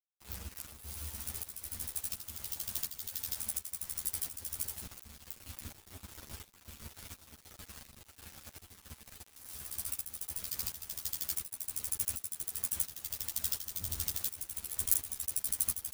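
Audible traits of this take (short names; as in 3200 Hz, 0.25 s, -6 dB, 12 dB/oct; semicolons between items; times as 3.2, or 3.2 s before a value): a quantiser's noise floor 8-bit, dither none; tremolo saw up 1.4 Hz, depth 70%; a shimmering, thickened sound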